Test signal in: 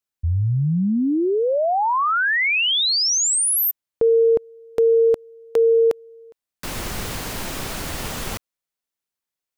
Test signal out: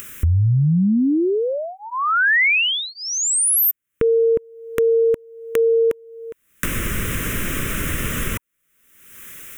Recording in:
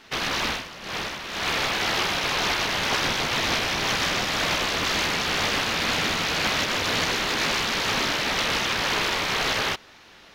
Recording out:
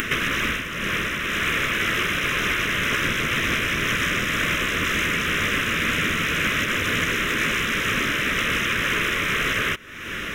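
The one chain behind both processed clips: band-stop 950 Hz, Q 11; upward compressor 4:1, threshold -20 dBFS; static phaser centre 1.9 kHz, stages 4; trim +4 dB

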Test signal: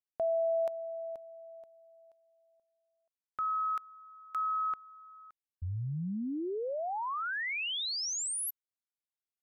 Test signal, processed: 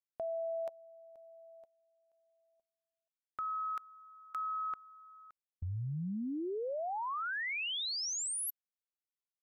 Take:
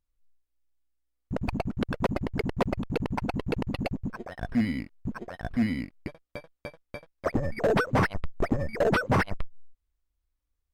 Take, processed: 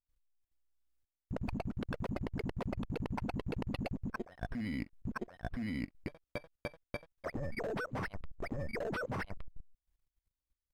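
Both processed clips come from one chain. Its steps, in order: level held to a coarse grid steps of 19 dB; trim +1 dB

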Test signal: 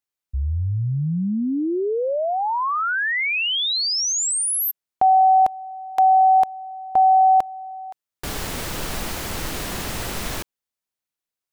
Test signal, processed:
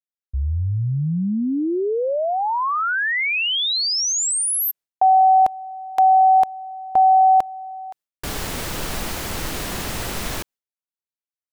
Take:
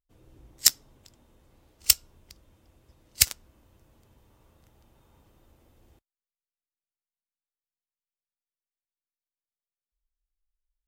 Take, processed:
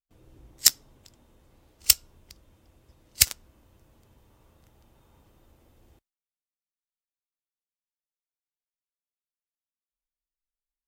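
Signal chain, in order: gate with hold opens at -59 dBFS, hold 71 ms, range -15 dB; trim +1 dB

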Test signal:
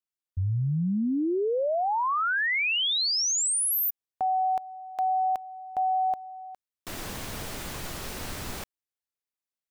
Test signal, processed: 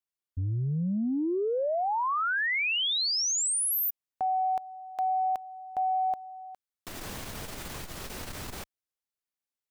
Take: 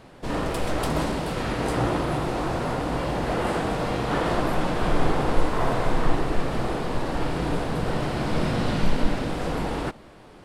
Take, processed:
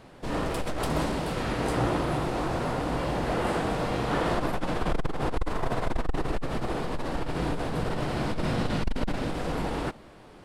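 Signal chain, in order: transformer saturation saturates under 83 Hz; trim -2 dB

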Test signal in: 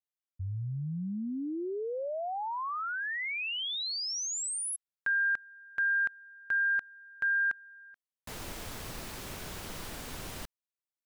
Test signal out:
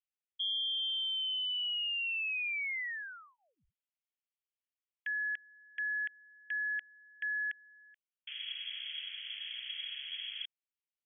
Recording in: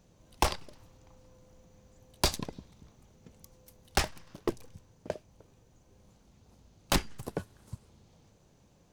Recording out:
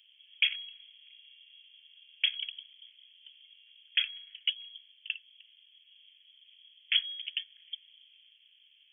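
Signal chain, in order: frequency inversion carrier 3.3 kHz; inverse Chebyshev high-pass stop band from 980 Hz, stop band 40 dB

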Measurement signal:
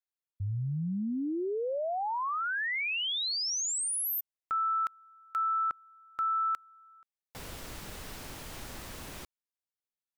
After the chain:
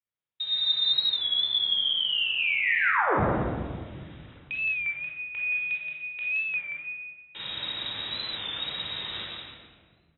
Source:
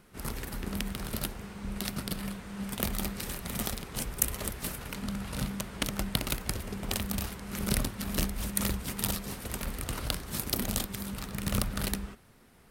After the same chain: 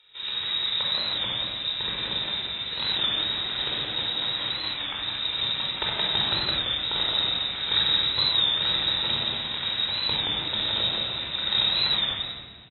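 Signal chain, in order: hum notches 50/100/150/200/250 Hz; on a send: delay 174 ms -4 dB; on the sum: hard clipper -15.5 dBFS; bass shelf 200 Hz +2.5 dB; in parallel at -3.5 dB: bit crusher 7-bit; on the sum: frequency inversion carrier 3.8 kHz; dynamic bell 3 kHz, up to -3 dB, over -35 dBFS, Q 1.5; high-pass 53 Hz; simulated room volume 2000 m³, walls mixed, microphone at 4.5 m; warped record 33 1/3 rpm, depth 100 cents; trim -4.5 dB

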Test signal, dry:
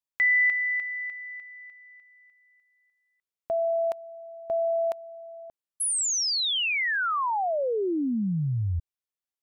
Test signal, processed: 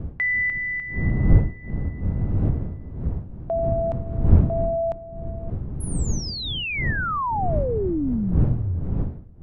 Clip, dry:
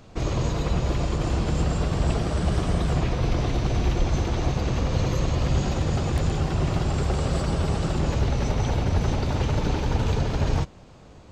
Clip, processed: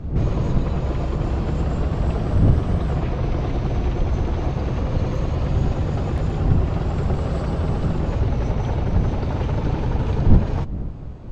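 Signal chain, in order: wind noise 120 Hz -24 dBFS; low-pass 1.6 kHz 6 dB/octave; in parallel at 0 dB: compression, threshold -26 dBFS; on the sum: trim -2 dB

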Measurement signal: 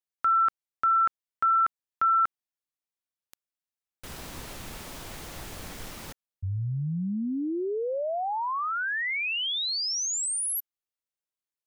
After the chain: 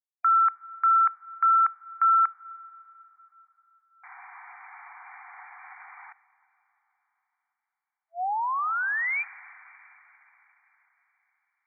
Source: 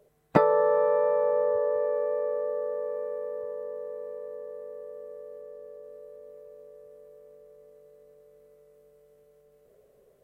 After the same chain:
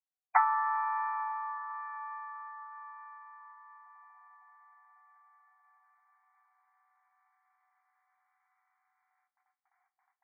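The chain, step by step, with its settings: gate with hold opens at -52 dBFS, closes at -57 dBFS, hold 12 ms, range -35 dB; brick-wall FIR band-pass 710–2400 Hz; plate-style reverb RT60 4.2 s, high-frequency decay 0.95×, DRR 17.5 dB; trim +2 dB

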